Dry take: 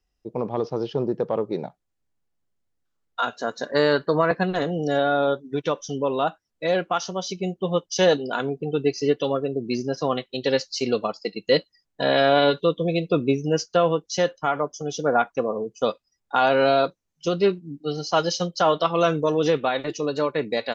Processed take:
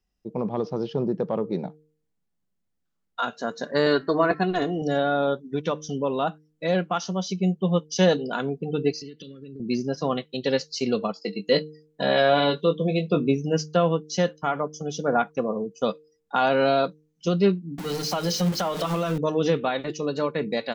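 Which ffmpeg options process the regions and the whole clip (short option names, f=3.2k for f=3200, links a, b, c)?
-filter_complex "[0:a]asettb=1/sr,asplit=3[a][b][c];[a]atrim=end=3.864[d];[b]atrim=start=3.86:end=4.82,asetpts=PTS-STARTPTS,afade=t=in:d=0.004:c=qsin,afade=t=out:st=0.956:d=0.004:c=qsin,aecho=1:1:2.8:0.64,atrim=end_sample=42336,bandreject=f=267.9:t=h:w=4,bandreject=f=535.8:t=h:w=4,bandreject=f=803.7:t=h:w=4,bandreject=f=1.0716k:t=h:w=4,bandreject=f=1.3395k:t=h:w=4,bandreject=f=1.6074k:t=h:w=4,bandreject=f=1.8753k:t=h:w=4,bandreject=f=2.1432k:t=h:w=4,bandreject=f=2.4111k:t=h:w=4,bandreject=f=2.679k:t=h:w=4[e];[c]atrim=start=4.816[f];[d][e]acrossfade=d=0.004:c1=hsin:c2=qsin[g];[g][f]acrossfade=d=0.004:c1=qsin:c2=hsin,asettb=1/sr,asplit=3[h][i][j];[h]atrim=end=8.934[k];[i]atrim=start=8.93:end=9.6,asetpts=PTS-STARTPTS,afade=t=in:d=0.004:c=qsin,afade=t=out:st=0.666:d=0.004:c=qsin,acompressor=threshold=-32dB:ratio=8:attack=3.2:release=140:knee=1:detection=peak,asuperstop=centerf=830:order=4:qfactor=0.53,equalizer=f=4.4k:w=5.3:g=9[l];[j]atrim=start=9.596[m];[k][l]acrossfade=d=0.004:c1=hsin:c2=qsin[n];[n][m]acrossfade=d=0.004:c1=qsin:c2=hsin,asettb=1/sr,asplit=3[o][p][q];[o]atrim=end=11.134[r];[p]atrim=start=11.13:end=13.28,asetpts=PTS-STARTPTS,afade=t=in:d=0.004:c=qsin,afade=t=out:st=2.146:d=0.004:c=qsin,lowshelf=f=85:g=-9,asplit=2[s][t];[t]adelay=20,volume=-7dB[u];[s][u]amix=inputs=2:normalize=0,atrim=end_sample=94815[v];[q]atrim=start=13.276[w];[r][v]acrossfade=d=0.004:c1=hsin:c2=qsin[x];[x][w]acrossfade=d=0.004:c1=qsin:c2=hsin,asettb=1/sr,asplit=3[y][z][aa];[y]atrim=end=17.784[ab];[z]atrim=start=17.78:end=19.18,asetpts=PTS-STARTPTS,afade=t=in:d=0.004:c=qsin,afade=t=out:st=1.396:d=0.004:c=qsin,aeval=exprs='val(0)+0.5*0.0501*sgn(val(0))':c=same,bandreject=f=50:t=h:w=6,bandreject=f=100:t=h:w=6,bandreject=f=150:t=h:w=6,bandreject=f=200:t=h:w=6,bandreject=f=250:t=h:w=6,bandreject=f=300:t=h:w=6,bandreject=f=350:t=h:w=6,bandreject=f=400:t=h:w=6,bandreject=f=450:t=h:w=6,bandreject=f=500:t=h:w=6,acompressor=threshold=-20dB:ratio=6:attack=3.2:release=140:knee=1:detection=peak[ac];[aa]atrim=start=19.176[ad];[ab][ac]acrossfade=d=0.004:c1=hsin:c2=qsin[ae];[ae][ad]acrossfade=d=0.004:c1=qsin:c2=hsin,equalizer=f=190:t=o:w=0.59:g=10,bandreject=f=153.1:t=h:w=4,bandreject=f=306.2:t=h:w=4,bandreject=f=459.3:t=h:w=4,volume=-2.5dB"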